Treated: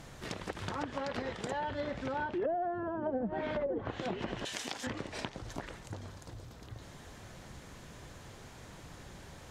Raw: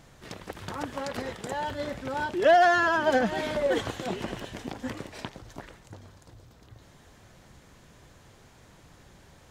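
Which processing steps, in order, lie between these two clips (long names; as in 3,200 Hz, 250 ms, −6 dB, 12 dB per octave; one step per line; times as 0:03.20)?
treble cut that deepens with the level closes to 480 Hz, closed at −21 dBFS
0:04.45–0:04.87: spectral tilt +4.5 dB per octave
downward compressor 2.5 to 1, threshold −41 dBFS, peak gain reduction 13 dB
level +4 dB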